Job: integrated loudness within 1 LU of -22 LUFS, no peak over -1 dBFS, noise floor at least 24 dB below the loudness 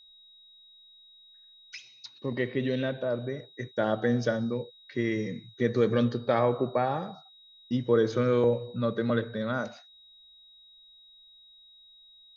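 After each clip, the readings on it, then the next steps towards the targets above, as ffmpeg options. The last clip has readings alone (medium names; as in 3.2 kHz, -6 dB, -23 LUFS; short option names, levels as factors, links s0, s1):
steady tone 3.8 kHz; tone level -53 dBFS; loudness -29.0 LUFS; peak level -11.5 dBFS; loudness target -22.0 LUFS
-> -af "bandreject=f=3800:w=30"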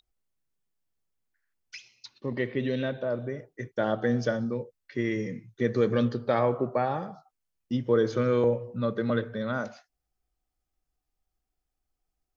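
steady tone not found; loudness -29.0 LUFS; peak level -11.5 dBFS; loudness target -22.0 LUFS
-> -af "volume=2.24"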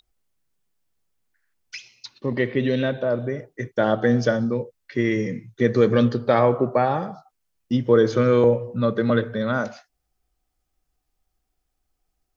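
loudness -22.0 LUFS; peak level -4.5 dBFS; noise floor -77 dBFS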